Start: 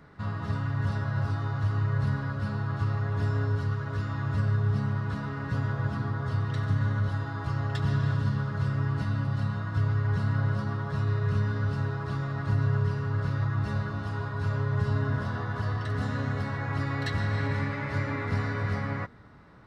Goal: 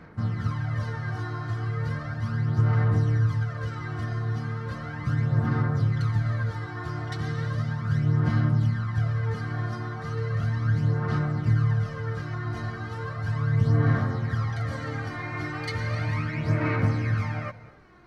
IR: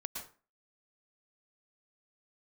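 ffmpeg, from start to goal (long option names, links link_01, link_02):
-filter_complex "[0:a]aphaser=in_gain=1:out_gain=1:delay=3.1:decay=0.57:speed=0.33:type=sinusoidal,asplit=2[link_01][link_02];[1:a]atrim=start_sample=2205,asetrate=25578,aresample=44100[link_03];[link_02][link_03]afir=irnorm=-1:irlink=0,volume=-16dB[link_04];[link_01][link_04]amix=inputs=2:normalize=0,asetrate=48000,aresample=44100,volume=-2.5dB"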